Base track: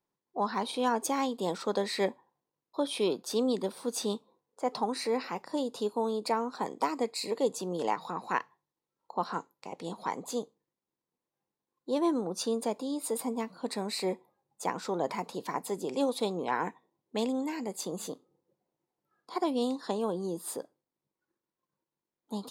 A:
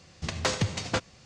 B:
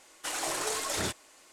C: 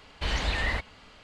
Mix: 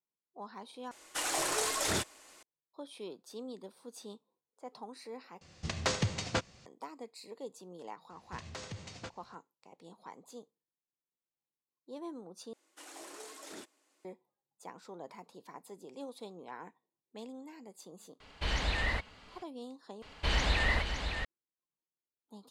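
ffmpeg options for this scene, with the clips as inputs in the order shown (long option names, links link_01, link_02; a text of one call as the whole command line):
ffmpeg -i bed.wav -i cue0.wav -i cue1.wav -i cue2.wav -filter_complex "[2:a]asplit=2[link_01][link_02];[1:a]asplit=2[link_03][link_04];[3:a]asplit=2[link_05][link_06];[0:a]volume=-15.5dB[link_07];[link_04]alimiter=limit=-22.5dB:level=0:latency=1:release=59[link_08];[link_02]highpass=frequency=280:width_type=q:width=2.3[link_09];[link_06]aecho=1:1:562:0.447[link_10];[link_07]asplit=5[link_11][link_12][link_13][link_14][link_15];[link_11]atrim=end=0.914[link_16];[link_01]atrim=end=1.52[link_17];[link_12]atrim=start=2.426:end=5.414[link_18];[link_03]atrim=end=1.25,asetpts=PTS-STARTPTS,volume=-4dB[link_19];[link_13]atrim=start=6.656:end=12.534[link_20];[link_09]atrim=end=1.52,asetpts=PTS-STARTPTS,volume=-17.5dB[link_21];[link_14]atrim=start=14.046:end=20.024[link_22];[link_10]atrim=end=1.23,asetpts=PTS-STARTPTS,volume=-1dB[link_23];[link_15]atrim=start=21.246[link_24];[link_08]atrim=end=1.25,asetpts=PTS-STARTPTS,volume=-12.5dB,afade=type=in:duration=0.004:curve=hsin,afade=type=out:start_time=1.246:duration=0.004:curve=hsin,adelay=357210S[link_25];[link_05]atrim=end=1.23,asetpts=PTS-STARTPTS,volume=-4dB,afade=type=in:duration=0.004:curve=hsin,afade=type=out:start_time=1.226:duration=0.004:curve=hsin,adelay=18200[link_26];[link_16][link_17]acrossfade=duration=0.004:curve1=hsin:curve2=hsin[link_27];[link_27][link_18]acrossfade=duration=0.004:curve1=hsin:curve2=hsin[link_28];[link_28][link_19]acrossfade=duration=0.004:curve1=hsin:curve2=hsin[link_29];[link_29][link_20]acrossfade=duration=0.004:curve1=hsin:curve2=hsin[link_30];[link_30][link_21]acrossfade=duration=0.004:curve1=hsin:curve2=hsin[link_31];[link_31][link_22]acrossfade=duration=0.004:curve1=hsin:curve2=hsin[link_32];[link_32][link_23]acrossfade=duration=0.004:curve1=hsin:curve2=hsin[link_33];[link_33][link_24]acrossfade=duration=0.004:curve1=hsin:curve2=hsin[link_34];[link_34][link_25][link_26]amix=inputs=3:normalize=0" out.wav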